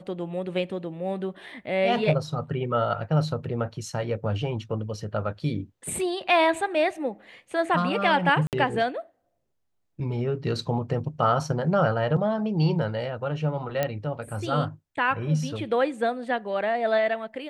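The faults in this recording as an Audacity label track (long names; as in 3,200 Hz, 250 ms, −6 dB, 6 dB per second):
8.470000	8.530000	drop-out 58 ms
13.830000	13.830000	click −11 dBFS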